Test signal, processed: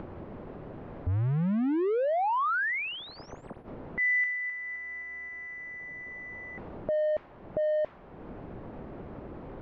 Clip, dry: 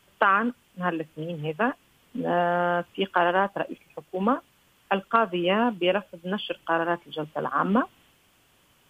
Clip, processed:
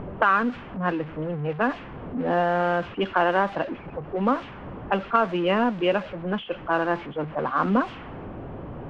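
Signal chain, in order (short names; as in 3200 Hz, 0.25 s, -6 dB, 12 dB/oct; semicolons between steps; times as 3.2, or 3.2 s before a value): zero-crossing step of -31 dBFS; LPF 2900 Hz 12 dB/oct; low-pass opened by the level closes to 410 Hz, open at -18 dBFS; upward compressor, threshold -28 dBFS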